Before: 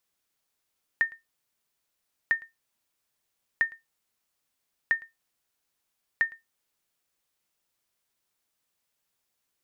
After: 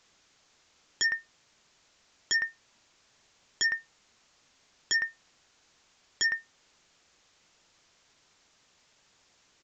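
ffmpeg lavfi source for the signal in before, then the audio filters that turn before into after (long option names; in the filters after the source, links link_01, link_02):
-f lavfi -i "aevalsrc='0.188*(sin(2*PI*1820*mod(t,1.3))*exp(-6.91*mod(t,1.3)/0.17)+0.0708*sin(2*PI*1820*max(mod(t,1.3)-0.11,0))*exp(-6.91*max(mod(t,1.3)-0.11,0)/0.17))':duration=6.5:sample_rate=44100"
-filter_complex "[0:a]acrossover=split=2500[link_01][link_02];[link_02]acompressor=threshold=-59dB:ratio=4:attack=1:release=60[link_03];[link_01][link_03]amix=inputs=2:normalize=0,alimiter=limit=-22dB:level=0:latency=1:release=80,aresample=16000,aeval=exprs='0.0794*sin(PI/2*5.01*val(0)/0.0794)':channel_layout=same,aresample=44100"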